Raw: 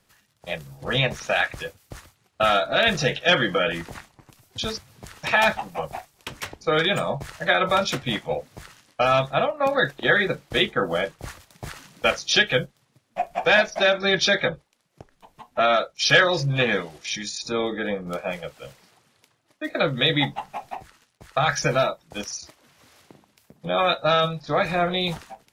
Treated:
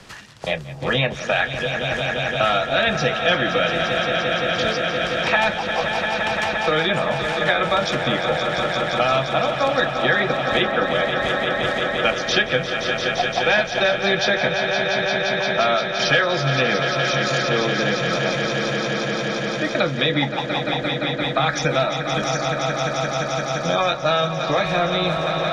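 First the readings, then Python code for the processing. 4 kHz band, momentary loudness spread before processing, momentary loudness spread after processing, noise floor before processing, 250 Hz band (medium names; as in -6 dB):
+3.0 dB, 17 LU, 4 LU, -67 dBFS, +4.5 dB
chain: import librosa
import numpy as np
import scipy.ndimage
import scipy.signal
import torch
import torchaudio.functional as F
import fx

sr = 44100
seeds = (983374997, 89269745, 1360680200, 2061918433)

p1 = scipy.signal.sosfilt(scipy.signal.butter(2, 6100.0, 'lowpass', fs=sr, output='sos'), x)
p2 = p1 + fx.echo_swell(p1, sr, ms=173, loudest=5, wet_db=-11.5, dry=0)
p3 = fx.band_squash(p2, sr, depth_pct=70)
y = p3 * librosa.db_to_amplitude(1.0)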